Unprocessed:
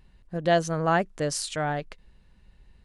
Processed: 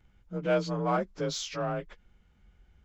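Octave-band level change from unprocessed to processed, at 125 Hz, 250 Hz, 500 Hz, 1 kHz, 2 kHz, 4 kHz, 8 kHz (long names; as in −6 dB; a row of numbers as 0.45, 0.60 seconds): −4.5, −3.0, −4.0, −6.5, −9.0, −3.5, −7.5 decibels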